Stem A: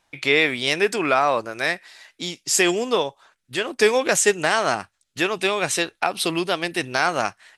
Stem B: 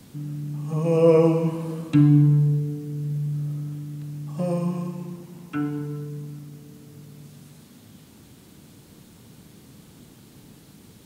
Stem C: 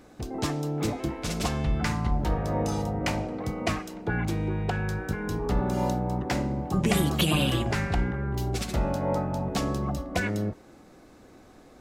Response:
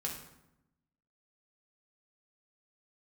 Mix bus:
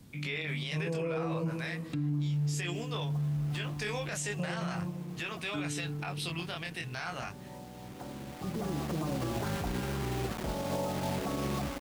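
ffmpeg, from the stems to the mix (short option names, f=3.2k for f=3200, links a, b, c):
-filter_complex "[0:a]asubboost=boost=9.5:cutoff=110,flanger=delay=17.5:depth=7.3:speed=0.37,equalizer=f=2.6k:t=o:w=1.7:g=5,volume=-11.5dB,asplit=2[a][b];[1:a]lowshelf=f=130:g=9.5,volume=-9.5dB[c];[2:a]lowpass=f=1.3k:w=0.5412,lowpass=f=1.3k:w=1.3066,lowshelf=f=72:g=-12,acrusher=bits=5:mix=0:aa=0.000001,adelay=1700,volume=-2dB[d];[b]apad=whole_len=595409[e];[d][e]sidechaincompress=threshold=-54dB:ratio=4:attack=25:release=1230[f];[a][c][f]amix=inputs=3:normalize=0,alimiter=level_in=2dB:limit=-24dB:level=0:latency=1:release=29,volume=-2dB"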